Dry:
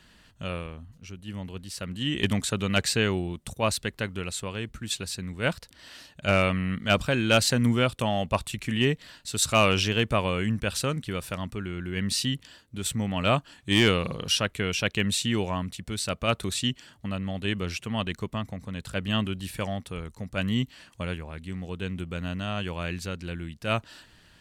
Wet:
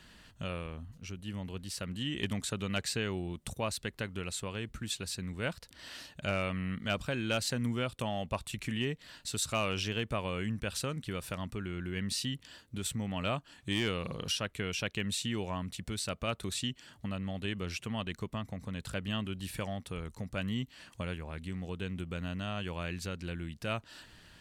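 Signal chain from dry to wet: compressor 2:1, threshold -38 dBFS, peak gain reduction 12 dB

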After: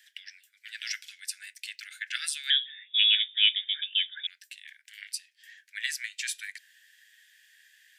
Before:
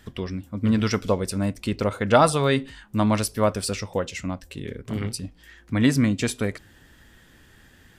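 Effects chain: 2.5–4.27 inverted band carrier 3600 Hz; steep high-pass 1600 Hz 96 dB/oct; gain -2 dB

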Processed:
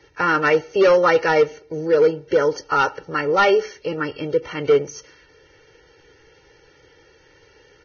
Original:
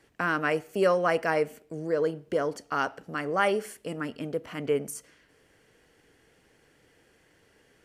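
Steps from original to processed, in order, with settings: comb 2.2 ms, depth 85%; overloaded stage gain 16.5 dB; gain +7 dB; Vorbis 16 kbps 16000 Hz

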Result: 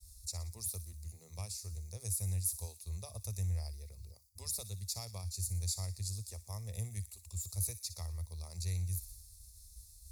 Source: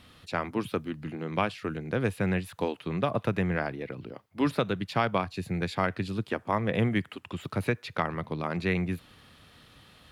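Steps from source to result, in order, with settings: expander -50 dBFS; inverse Chebyshev band-stop 130–3300 Hz, stop band 40 dB; on a send: thin delay 60 ms, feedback 54%, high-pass 2800 Hz, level -12 dB; on the sum: gain +16 dB

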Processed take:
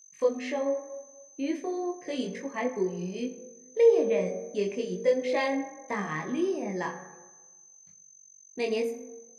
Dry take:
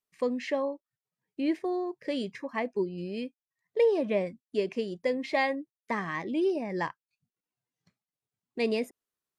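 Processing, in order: whine 6200 Hz -50 dBFS; on a send at -5.5 dB: reverb RT60 1.2 s, pre-delay 3 ms; on the sum: detuned doubles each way 13 cents; gain +2.5 dB

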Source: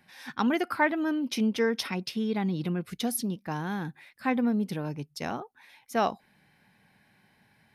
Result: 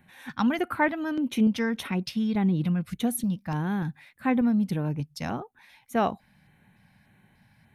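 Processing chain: LFO notch square 1.7 Hz 390–5000 Hz; low shelf 180 Hz +12 dB

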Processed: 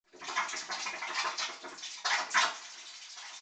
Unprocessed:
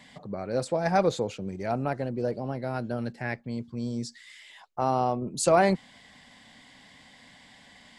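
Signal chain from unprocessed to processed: tape start at the beginning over 1.44 s; compressor 2.5:1, threshold -28 dBFS, peak gain reduction 8.5 dB; wah 5.4 Hz 470–3500 Hz, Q 4.3; tilt shelf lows -10 dB, about 670 Hz; noise vocoder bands 4; phaser stages 12, 3.2 Hz, lowest notch 180–1400 Hz; speed mistake 33 rpm record played at 78 rpm; bell 5600 Hz -3 dB 0.43 oct; echo 1.118 s -19.5 dB; two-slope reverb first 0.3 s, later 2 s, from -27 dB, DRR -9.5 dB; gain +3.5 dB; µ-law 128 kbps 16000 Hz

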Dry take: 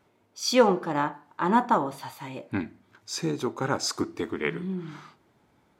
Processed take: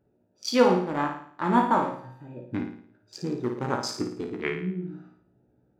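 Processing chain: Wiener smoothing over 41 samples; resonator 61 Hz, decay 0.19 s, harmonics all, mix 90%; flutter echo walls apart 9.5 m, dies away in 0.56 s; gain +4.5 dB

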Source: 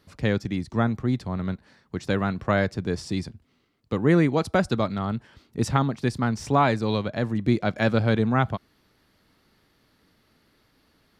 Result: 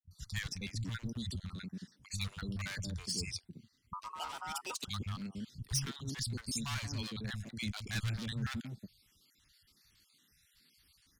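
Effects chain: random spectral dropouts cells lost 47%; bell 7800 Hz +12.5 dB 2.6 oct; overloaded stage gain 24.5 dB; passive tone stack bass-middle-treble 6-0-2; three bands offset in time lows, highs, mids 0.11/0.29 s, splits 160/620 Hz; 3.93–4.82 ring modulator 1100 Hz; gain +10 dB

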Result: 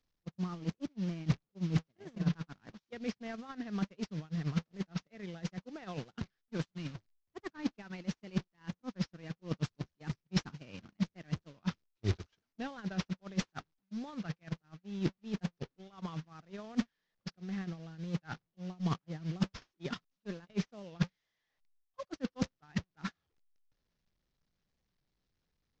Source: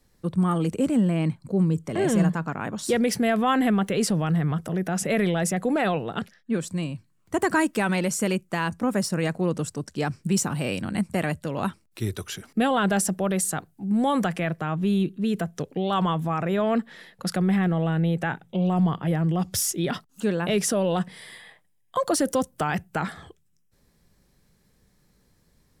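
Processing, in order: delta modulation 32 kbps, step -30.5 dBFS; dynamic EQ 660 Hz, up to -4 dB, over -40 dBFS, Q 1.3; reverse; compressor 12:1, threshold -29 dBFS, peak gain reduction 13 dB; reverse; low shelf 81 Hz +5.5 dB; gate -28 dBFS, range -55 dB; record warp 45 rpm, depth 100 cents; gain +7 dB

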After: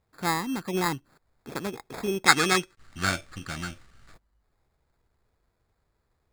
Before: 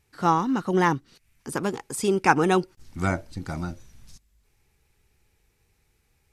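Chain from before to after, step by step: sample-and-hold 15×; spectral gain 2.26–4.14, 1100–10000 Hz +10 dB; gain -6 dB

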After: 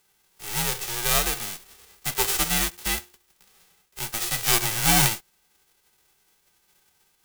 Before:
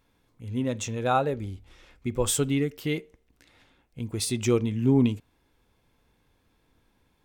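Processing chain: spectral whitening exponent 0.1; notch comb 370 Hz; frequency shift -100 Hz; gain +2.5 dB

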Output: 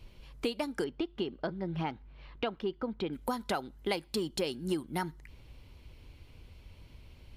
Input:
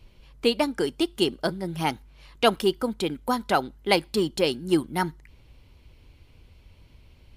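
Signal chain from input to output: compressor 6:1, threshold -30 dBFS, peak gain reduction 15.5 dB; 0.84–3.13 air absorption 280 m

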